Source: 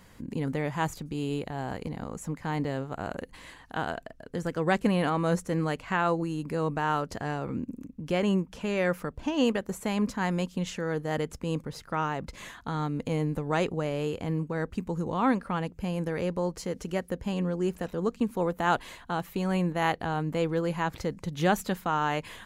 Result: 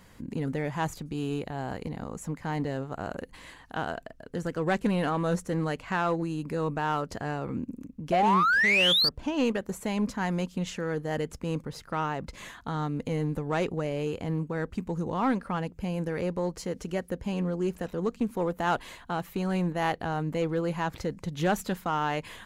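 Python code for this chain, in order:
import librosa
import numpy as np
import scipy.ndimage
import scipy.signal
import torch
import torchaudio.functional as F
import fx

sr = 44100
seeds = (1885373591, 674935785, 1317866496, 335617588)

p1 = fx.spec_paint(x, sr, seeds[0], shape='rise', start_s=8.12, length_s=0.97, low_hz=650.0, high_hz=4800.0, level_db=-21.0)
p2 = np.clip(10.0 ** (24.0 / 20.0) * p1, -1.0, 1.0) / 10.0 ** (24.0 / 20.0)
p3 = p1 + (p2 * 10.0 ** (-3.5 / 20.0))
p4 = fx.doppler_dist(p3, sr, depth_ms=0.1)
y = p4 * 10.0 ** (-4.5 / 20.0)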